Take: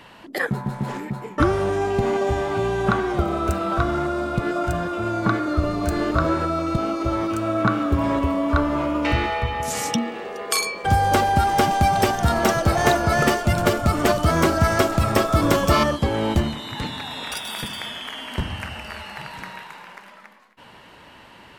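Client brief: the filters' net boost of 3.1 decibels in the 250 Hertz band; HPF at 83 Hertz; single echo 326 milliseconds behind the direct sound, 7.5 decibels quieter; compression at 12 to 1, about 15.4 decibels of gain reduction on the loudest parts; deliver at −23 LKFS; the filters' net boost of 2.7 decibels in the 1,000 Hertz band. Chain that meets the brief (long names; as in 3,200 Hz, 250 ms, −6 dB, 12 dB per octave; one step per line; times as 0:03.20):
high-pass filter 83 Hz
parametric band 250 Hz +4 dB
parametric band 1,000 Hz +3.5 dB
downward compressor 12 to 1, threshold −28 dBFS
single-tap delay 326 ms −7.5 dB
level +8.5 dB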